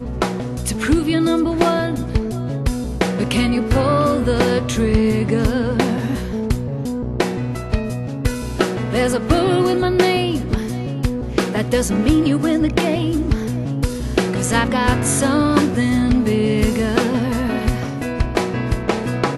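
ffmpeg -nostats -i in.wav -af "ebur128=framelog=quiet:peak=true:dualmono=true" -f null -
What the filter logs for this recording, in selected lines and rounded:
Integrated loudness:
  I:         -15.8 LUFS
  Threshold: -25.8 LUFS
Loudness range:
  LRA:         3.3 LU
  Threshold: -35.7 LUFS
  LRA low:   -17.5 LUFS
  LRA high:  -14.2 LUFS
True peak:
  Peak:       -1.9 dBFS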